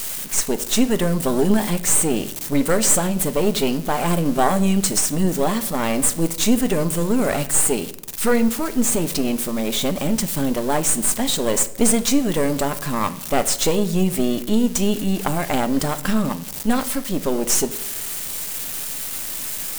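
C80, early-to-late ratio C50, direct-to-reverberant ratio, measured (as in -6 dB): 18.5 dB, 15.5 dB, 10.5 dB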